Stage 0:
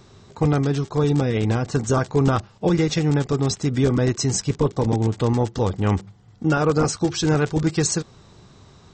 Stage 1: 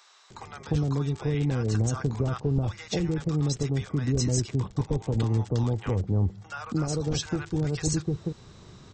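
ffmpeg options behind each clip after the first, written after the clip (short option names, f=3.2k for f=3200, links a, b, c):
-filter_complex "[0:a]acrossover=split=120[a][b];[b]acompressor=threshold=-27dB:ratio=6[c];[a][c]amix=inputs=2:normalize=0,acrossover=split=810[d][e];[d]adelay=300[f];[f][e]amix=inputs=2:normalize=0"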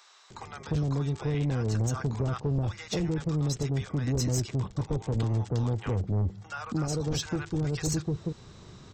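-af "asoftclip=type=tanh:threshold=-21.5dB"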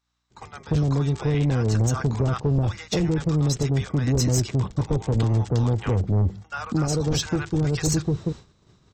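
-af "aeval=exprs='val(0)+0.00178*(sin(2*PI*60*n/s)+sin(2*PI*2*60*n/s)/2+sin(2*PI*3*60*n/s)/3+sin(2*PI*4*60*n/s)/4+sin(2*PI*5*60*n/s)/5)':c=same,agate=range=-33dB:threshold=-36dB:ratio=3:detection=peak,volume=6.5dB"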